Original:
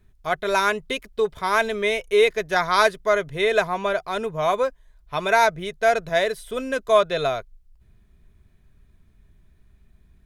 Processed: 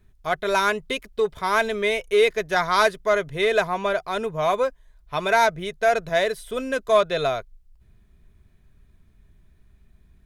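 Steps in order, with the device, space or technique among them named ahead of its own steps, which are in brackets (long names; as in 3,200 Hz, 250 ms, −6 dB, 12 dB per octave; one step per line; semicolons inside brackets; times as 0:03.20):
parallel distortion (in parallel at −9 dB: hard clipping −17.5 dBFS, distortion −9 dB)
on the sum: level −2.5 dB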